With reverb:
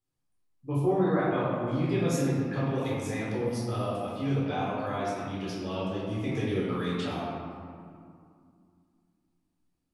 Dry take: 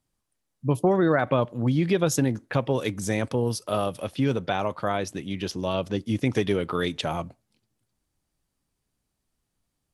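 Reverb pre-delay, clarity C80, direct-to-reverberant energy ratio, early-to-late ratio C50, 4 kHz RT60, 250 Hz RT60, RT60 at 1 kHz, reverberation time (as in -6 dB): 10 ms, 0.5 dB, -7.5 dB, -1.5 dB, 1.2 s, 3.2 s, 2.3 s, 2.3 s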